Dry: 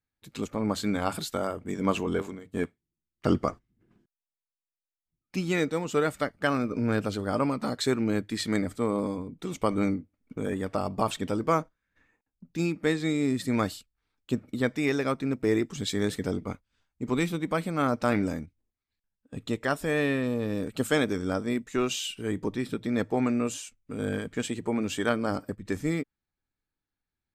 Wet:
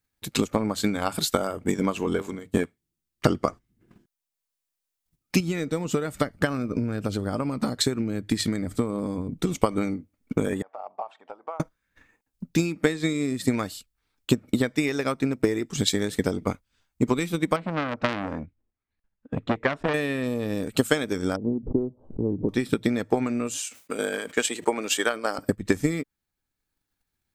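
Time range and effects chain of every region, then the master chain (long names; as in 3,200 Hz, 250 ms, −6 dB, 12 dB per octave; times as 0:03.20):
0:05.40–0:09.55: low-shelf EQ 280 Hz +9 dB + downward compressor 2 to 1, threshold −34 dBFS
0:10.62–0:11.60: downward compressor 12 to 1, threshold −29 dBFS + four-pole ladder band-pass 850 Hz, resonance 60%
0:17.56–0:19.94: low-pass filter 2,000 Hz + saturating transformer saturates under 1,800 Hz
0:21.36–0:22.49: Gaussian smoothing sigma 16 samples + background raised ahead of every attack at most 110 dB per second
0:23.60–0:25.38: high-pass filter 460 Hz + level that may fall only so fast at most 140 dB per second
whole clip: downward compressor 5 to 1, threshold −30 dBFS; transient designer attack +8 dB, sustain −3 dB; high-shelf EQ 4,600 Hz +6 dB; level +6 dB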